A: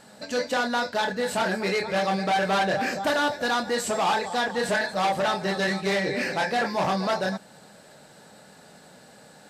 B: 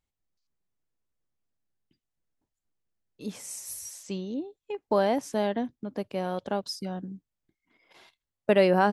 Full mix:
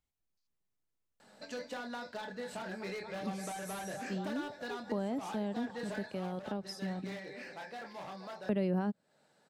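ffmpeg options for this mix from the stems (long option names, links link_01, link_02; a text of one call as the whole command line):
ffmpeg -i stem1.wav -i stem2.wav -filter_complex "[0:a]highshelf=frequency=7600:gain=-8,aeval=exprs='0.112*(abs(mod(val(0)/0.112+3,4)-2)-1)':channel_layout=same,lowshelf=frequency=150:gain=-8.5,adelay=1200,volume=-9.5dB,afade=type=out:start_time=5.82:duration=0.62:silence=0.375837[link_01];[1:a]volume=-3dB,asplit=2[link_02][link_03];[link_03]apad=whole_len=471633[link_04];[link_01][link_04]sidechaincompress=threshold=-31dB:ratio=8:attack=29:release=124[link_05];[link_05][link_02]amix=inputs=2:normalize=0,acrossover=split=290[link_06][link_07];[link_07]acompressor=threshold=-41dB:ratio=4[link_08];[link_06][link_08]amix=inputs=2:normalize=0" out.wav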